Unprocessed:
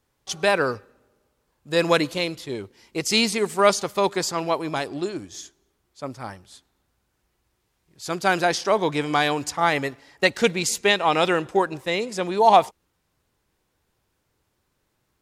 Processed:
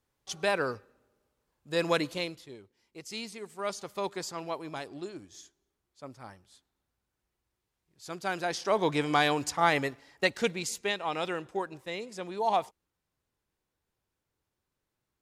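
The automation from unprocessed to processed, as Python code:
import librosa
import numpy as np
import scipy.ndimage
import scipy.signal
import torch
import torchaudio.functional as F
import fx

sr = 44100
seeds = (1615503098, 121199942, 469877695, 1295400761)

y = fx.gain(x, sr, db=fx.line((2.22, -8.0), (2.62, -19.0), (3.54, -19.0), (3.94, -12.0), (8.4, -12.0), (8.87, -4.0), (9.78, -4.0), (10.96, -12.5)))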